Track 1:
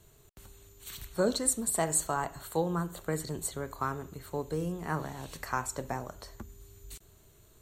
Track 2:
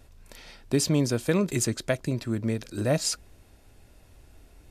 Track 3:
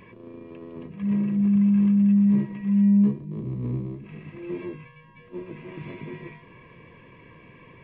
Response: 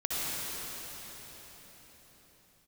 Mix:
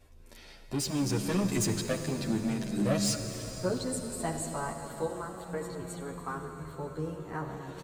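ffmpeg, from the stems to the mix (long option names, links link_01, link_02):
-filter_complex "[0:a]lowpass=frequency=3800:poles=1,adelay=2450,volume=-7.5dB,asplit=2[link_01][link_02];[link_02]volume=-12dB[link_03];[1:a]asoftclip=type=tanh:threshold=-24.5dB,volume=-3.5dB,asplit=2[link_04][link_05];[link_05]volume=-13.5dB[link_06];[2:a]volume=-19.5dB[link_07];[3:a]atrim=start_sample=2205[link_08];[link_03][link_06]amix=inputs=2:normalize=0[link_09];[link_09][link_08]afir=irnorm=-1:irlink=0[link_10];[link_01][link_04][link_07][link_10]amix=inputs=4:normalize=0,dynaudnorm=framelen=150:gausssize=13:maxgain=5dB,asplit=2[link_11][link_12];[link_12]adelay=9.8,afreqshift=-0.44[link_13];[link_11][link_13]amix=inputs=2:normalize=1"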